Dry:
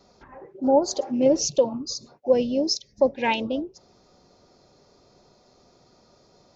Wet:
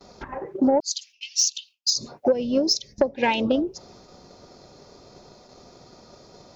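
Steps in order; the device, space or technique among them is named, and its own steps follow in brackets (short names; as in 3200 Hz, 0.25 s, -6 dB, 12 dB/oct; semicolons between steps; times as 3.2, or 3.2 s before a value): 0.8–1.96 steep high-pass 2600 Hz 48 dB/oct; gate with hold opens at -49 dBFS; drum-bus smash (transient shaper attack +7 dB, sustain +2 dB; compressor 10:1, threshold -24 dBFS, peak gain reduction 17.5 dB; soft clip -16 dBFS, distortion -22 dB); gain +8 dB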